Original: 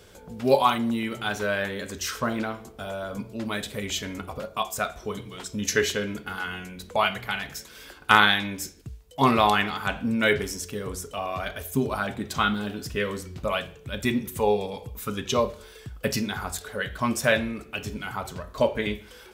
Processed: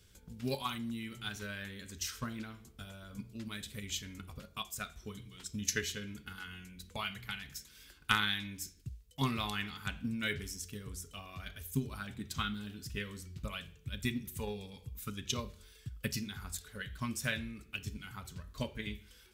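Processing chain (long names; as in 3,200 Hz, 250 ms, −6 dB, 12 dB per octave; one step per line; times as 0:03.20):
transient designer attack +6 dB, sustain +1 dB
guitar amp tone stack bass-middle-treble 6-0-2
level +5 dB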